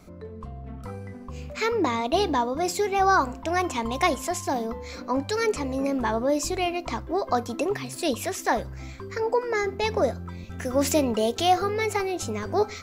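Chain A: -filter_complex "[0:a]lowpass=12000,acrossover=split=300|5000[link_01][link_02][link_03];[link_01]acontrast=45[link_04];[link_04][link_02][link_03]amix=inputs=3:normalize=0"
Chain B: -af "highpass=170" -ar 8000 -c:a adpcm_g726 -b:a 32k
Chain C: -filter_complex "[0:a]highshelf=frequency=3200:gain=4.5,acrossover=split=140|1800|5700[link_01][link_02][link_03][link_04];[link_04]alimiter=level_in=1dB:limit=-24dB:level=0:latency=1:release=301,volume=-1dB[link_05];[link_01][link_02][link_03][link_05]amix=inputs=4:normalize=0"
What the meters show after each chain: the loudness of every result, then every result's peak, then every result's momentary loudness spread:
−25.0, −26.5, −25.5 LKFS; −7.5, −10.0, −9.0 dBFS; 13, 18, 16 LU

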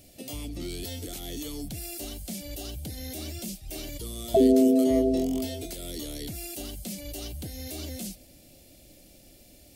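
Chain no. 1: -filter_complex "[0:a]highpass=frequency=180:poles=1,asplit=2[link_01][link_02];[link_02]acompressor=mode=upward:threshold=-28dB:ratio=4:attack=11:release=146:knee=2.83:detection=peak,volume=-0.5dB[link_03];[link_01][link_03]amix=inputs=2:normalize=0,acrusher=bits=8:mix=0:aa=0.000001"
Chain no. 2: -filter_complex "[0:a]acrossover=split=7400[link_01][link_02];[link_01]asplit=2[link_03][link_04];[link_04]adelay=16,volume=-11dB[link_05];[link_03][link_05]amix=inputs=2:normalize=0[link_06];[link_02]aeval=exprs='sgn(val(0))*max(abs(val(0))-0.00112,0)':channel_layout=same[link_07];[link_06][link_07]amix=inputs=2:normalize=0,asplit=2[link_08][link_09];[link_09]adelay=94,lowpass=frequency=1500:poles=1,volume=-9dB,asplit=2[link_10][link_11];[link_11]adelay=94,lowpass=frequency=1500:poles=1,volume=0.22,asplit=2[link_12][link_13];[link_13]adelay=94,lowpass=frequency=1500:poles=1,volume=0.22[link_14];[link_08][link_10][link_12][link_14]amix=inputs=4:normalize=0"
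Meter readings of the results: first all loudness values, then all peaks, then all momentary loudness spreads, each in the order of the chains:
−24.0, −29.5 LKFS; −2.5, −8.0 dBFS; 18, 16 LU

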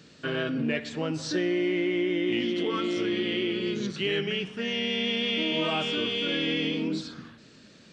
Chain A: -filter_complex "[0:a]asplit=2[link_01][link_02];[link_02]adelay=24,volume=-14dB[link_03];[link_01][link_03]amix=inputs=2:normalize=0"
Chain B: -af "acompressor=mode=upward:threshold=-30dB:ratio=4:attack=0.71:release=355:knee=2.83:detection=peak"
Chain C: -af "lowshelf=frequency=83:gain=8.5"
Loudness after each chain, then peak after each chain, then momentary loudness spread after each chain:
−28.0, −28.0, −27.5 LKFS; −15.5, −15.5, −15.5 dBFS; 5, 6, 5 LU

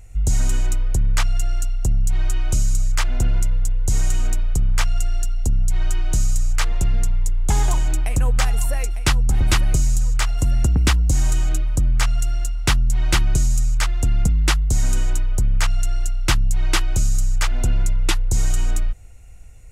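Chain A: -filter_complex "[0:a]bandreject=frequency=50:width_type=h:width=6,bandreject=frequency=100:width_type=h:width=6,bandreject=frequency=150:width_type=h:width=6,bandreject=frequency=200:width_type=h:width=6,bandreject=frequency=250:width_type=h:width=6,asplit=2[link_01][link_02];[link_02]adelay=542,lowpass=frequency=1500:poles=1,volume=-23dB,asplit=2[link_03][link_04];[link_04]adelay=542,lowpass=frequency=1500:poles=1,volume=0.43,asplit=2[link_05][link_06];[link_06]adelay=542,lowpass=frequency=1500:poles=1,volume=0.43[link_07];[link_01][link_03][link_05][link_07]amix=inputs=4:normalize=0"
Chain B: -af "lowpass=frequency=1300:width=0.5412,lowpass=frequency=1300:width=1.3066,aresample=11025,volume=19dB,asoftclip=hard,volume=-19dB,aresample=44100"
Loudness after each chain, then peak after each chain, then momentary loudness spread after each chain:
−22.5, −26.0 LKFS; −6.5, −18.5 dBFS; 4, 3 LU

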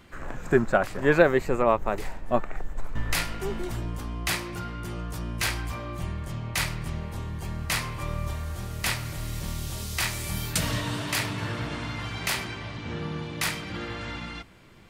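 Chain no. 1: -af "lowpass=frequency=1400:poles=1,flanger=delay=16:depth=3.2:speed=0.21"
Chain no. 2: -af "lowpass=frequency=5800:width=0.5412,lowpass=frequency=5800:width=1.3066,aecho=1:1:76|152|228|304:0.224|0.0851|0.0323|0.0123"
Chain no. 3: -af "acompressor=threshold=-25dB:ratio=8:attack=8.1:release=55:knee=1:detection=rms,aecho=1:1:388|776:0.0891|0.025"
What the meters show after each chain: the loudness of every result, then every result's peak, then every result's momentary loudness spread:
−33.5, −29.0, −32.0 LKFS; −9.5, −6.5, −11.0 dBFS; 12, 12, 6 LU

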